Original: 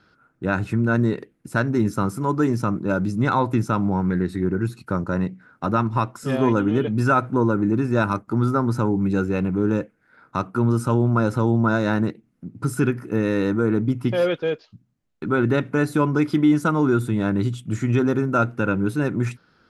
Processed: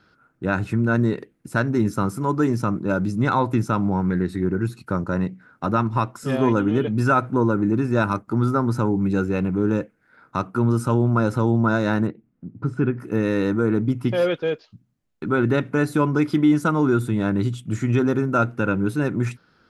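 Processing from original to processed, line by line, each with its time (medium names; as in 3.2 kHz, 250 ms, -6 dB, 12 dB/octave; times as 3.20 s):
12.07–13.00 s: tape spacing loss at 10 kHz 31 dB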